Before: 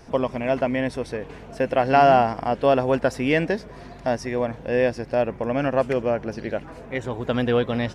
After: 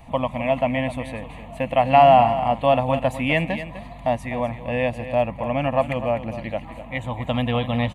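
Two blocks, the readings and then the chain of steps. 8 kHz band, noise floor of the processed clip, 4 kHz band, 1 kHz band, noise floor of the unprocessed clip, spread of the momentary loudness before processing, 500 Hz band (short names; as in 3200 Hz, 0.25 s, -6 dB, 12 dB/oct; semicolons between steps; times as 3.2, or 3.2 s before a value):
n/a, -39 dBFS, +3.0 dB, +3.5 dB, -42 dBFS, 12 LU, 0.0 dB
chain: fixed phaser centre 1500 Hz, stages 6; on a send: echo 0.251 s -12 dB; on the sum: gain +4.5 dB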